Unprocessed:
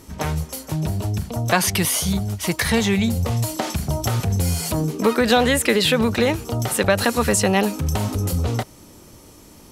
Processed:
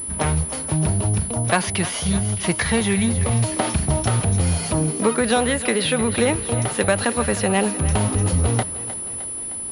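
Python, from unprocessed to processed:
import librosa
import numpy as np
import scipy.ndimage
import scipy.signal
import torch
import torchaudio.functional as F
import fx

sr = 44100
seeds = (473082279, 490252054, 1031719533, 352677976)

y = fx.rider(x, sr, range_db=3, speed_s=0.5)
y = fx.echo_thinned(y, sr, ms=308, feedback_pct=63, hz=230.0, wet_db=-13.5)
y = fx.pwm(y, sr, carrier_hz=10000.0)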